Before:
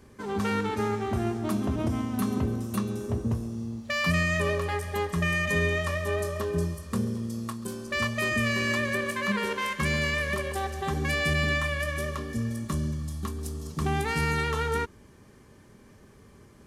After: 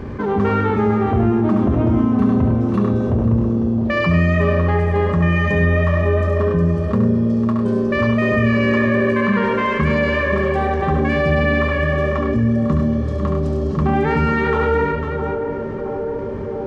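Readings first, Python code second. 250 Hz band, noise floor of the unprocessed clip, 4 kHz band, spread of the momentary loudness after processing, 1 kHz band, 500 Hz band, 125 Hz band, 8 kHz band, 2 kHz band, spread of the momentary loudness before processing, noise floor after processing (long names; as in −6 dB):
+14.0 dB, −54 dBFS, 0.0 dB, 5 LU, +10.5 dB, +13.0 dB, +12.5 dB, below −10 dB, +6.0 dB, 7 LU, −25 dBFS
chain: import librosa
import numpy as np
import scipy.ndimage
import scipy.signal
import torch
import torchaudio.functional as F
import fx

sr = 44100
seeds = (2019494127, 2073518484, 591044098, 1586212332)

p1 = fx.spacing_loss(x, sr, db_at_10k=37)
p2 = fx.echo_banded(p1, sr, ms=665, feedback_pct=85, hz=460.0, wet_db=-13.0)
p3 = fx.dynamic_eq(p2, sr, hz=3800.0, q=1.3, threshold_db=-54.0, ratio=4.0, max_db=-4)
p4 = p3 + fx.echo_multitap(p3, sr, ms=(70, 101, 500), db=(-5.5, -7.0, -12.0), dry=0)
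p5 = fx.env_flatten(p4, sr, amount_pct=50)
y = p5 * 10.0 ** (8.5 / 20.0)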